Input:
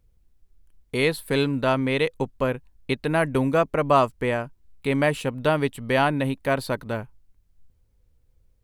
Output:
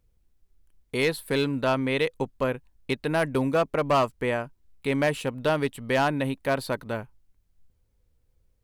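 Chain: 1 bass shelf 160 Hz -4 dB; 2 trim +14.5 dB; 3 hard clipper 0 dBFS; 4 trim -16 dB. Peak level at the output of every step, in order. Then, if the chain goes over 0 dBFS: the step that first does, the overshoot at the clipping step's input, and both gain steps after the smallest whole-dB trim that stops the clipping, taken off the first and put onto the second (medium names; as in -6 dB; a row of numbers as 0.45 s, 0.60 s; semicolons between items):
-6.0 dBFS, +8.5 dBFS, 0.0 dBFS, -16.0 dBFS; step 2, 8.5 dB; step 2 +5.5 dB, step 4 -7 dB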